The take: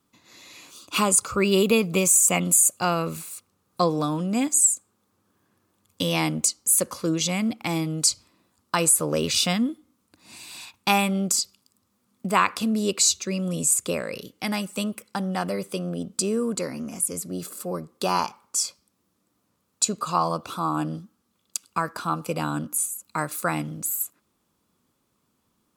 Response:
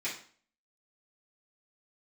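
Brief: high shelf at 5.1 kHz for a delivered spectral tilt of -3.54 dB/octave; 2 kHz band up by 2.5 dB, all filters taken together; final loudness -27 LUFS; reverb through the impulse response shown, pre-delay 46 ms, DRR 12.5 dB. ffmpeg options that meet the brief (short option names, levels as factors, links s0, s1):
-filter_complex "[0:a]equalizer=f=2000:t=o:g=5,highshelf=f=5100:g=-8.5,asplit=2[s0][s1];[1:a]atrim=start_sample=2205,adelay=46[s2];[s1][s2]afir=irnorm=-1:irlink=0,volume=0.133[s3];[s0][s3]amix=inputs=2:normalize=0,volume=0.841"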